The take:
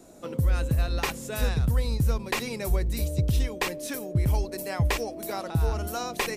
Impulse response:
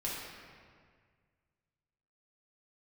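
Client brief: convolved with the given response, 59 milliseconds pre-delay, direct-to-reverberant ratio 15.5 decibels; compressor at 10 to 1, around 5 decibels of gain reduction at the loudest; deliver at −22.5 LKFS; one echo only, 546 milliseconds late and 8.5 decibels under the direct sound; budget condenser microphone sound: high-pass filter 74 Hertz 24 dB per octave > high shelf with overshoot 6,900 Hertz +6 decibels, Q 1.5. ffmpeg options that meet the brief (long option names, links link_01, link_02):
-filter_complex "[0:a]acompressor=threshold=-24dB:ratio=10,aecho=1:1:546:0.376,asplit=2[link_01][link_02];[1:a]atrim=start_sample=2205,adelay=59[link_03];[link_02][link_03]afir=irnorm=-1:irlink=0,volume=-19dB[link_04];[link_01][link_04]amix=inputs=2:normalize=0,highpass=frequency=74:width=0.5412,highpass=frequency=74:width=1.3066,highshelf=frequency=6900:width_type=q:width=1.5:gain=6,volume=8.5dB"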